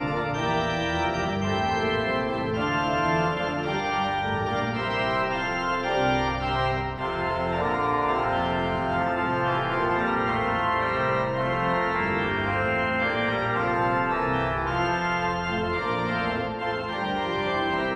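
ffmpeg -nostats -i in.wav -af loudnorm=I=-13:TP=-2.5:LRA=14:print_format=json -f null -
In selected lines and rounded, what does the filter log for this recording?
"input_i" : "-25.5",
"input_tp" : "-11.9",
"input_lra" : "1.9",
"input_thresh" : "-35.5",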